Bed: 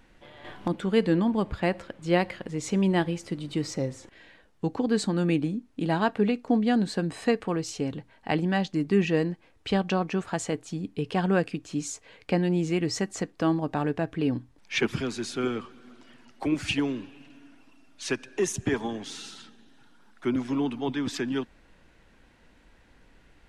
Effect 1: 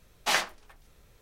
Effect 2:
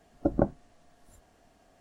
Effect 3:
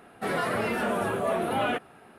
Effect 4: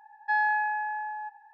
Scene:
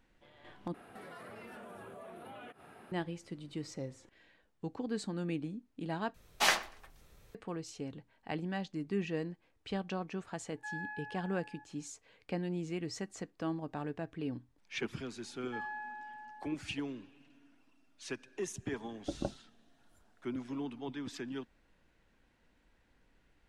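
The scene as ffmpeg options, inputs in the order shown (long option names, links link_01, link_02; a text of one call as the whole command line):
ffmpeg -i bed.wav -i cue0.wav -i cue1.wav -i cue2.wav -i cue3.wav -filter_complex "[4:a]asplit=2[link_01][link_02];[0:a]volume=-12dB[link_03];[3:a]acompressor=threshold=-45dB:ratio=6:attack=3.2:release=140:knee=1:detection=peak[link_04];[1:a]asplit=2[link_05][link_06];[link_06]adelay=122,lowpass=frequency=3100:poles=1,volume=-19.5dB,asplit=2[link_07][link_08];[link_08]adelay=122,lowpass=frequency=3100:poles=1,volume=0.26[link_09];[link_05][link_07][link_09]amix=inputs=3:normalize=0[link_10];[link_01]highpass=frequency=970:width=0.5412,highpass=frequency=970:width=1.3066[link_11];[link_03]asplit=3[link_12][link_13][link_14];[link_12]atrim=end=0.744[link_15];[link_04]atrim=end=2.18,asetpts=PTS-STARTPTS,volume=-3dB[link_16];[link_13]atrim=start=2.916:end=6.144[link_17];[link_10]atrim=end=1.21,asetpts=PTS-STARTPTS,volume=-2dB[link_18];[link_14]atrim=start=7.346[link_19];[link_11]atrim=end=1.53,asetpts=PTS-STARTPTS,volume=-15dB,afade=type=in:duration=0.004:curve=hsin,afade=type=out:start_time=1.526:duration=0.004:curve=hsin,adelay=10350[link_20];[link_02]atrim=end=1.53,asetpts=PTS-STARTPTS,volume=-16.5dB,afade=type=in:duration=0.004:curve=hsin,afade=type=out:start_time=1.526:duration=0.004:curve=hsin,adelay=672084S[link_21];[2:a]atrim=end=1.8,asetpts=PTS-STARTPTS,volume=-12dB,afade=type=in:duration=0.004:curve=hsin,afade=type=out:start_time=1.796:duration=0.004:curve=hsin,adelay=18830[link_22];[link_15][link_16]acrossfade=duration=0.004:curve1=hsin:curve2=hsin[link_23];[link_23][link_17]acrossfade=duration=0.004:curve1=hsin:curve2=hsin[link_24];[link_24][link_18]acrossfade=duration=0.004:curve1=hsin:curve2=hsin[link_25];[link_25][link_19]acrossfade=duration=0.004:curve1=hsin:curve2=hsin[link_26];[link_26][link_20][link_21][link_22]amix=inputs=4:normalize=0" out.wav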